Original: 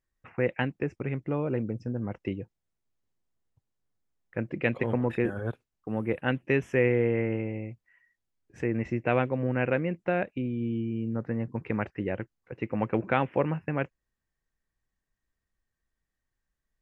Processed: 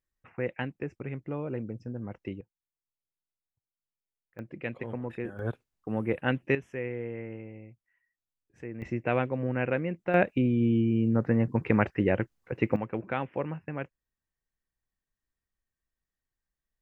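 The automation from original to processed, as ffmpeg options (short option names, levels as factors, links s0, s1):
-af "asetnsamples=n=441:p=0,asendcmd='2.41 volume volume -17.5dB;4.39 volume volume -8.5dB;5.39 volume volume 0dB;6.55 volume volume -11dB;8.82 volume volume -2dB;10.14 volume volume 6dB;12.76 volume volume -6dB',volume=0.562"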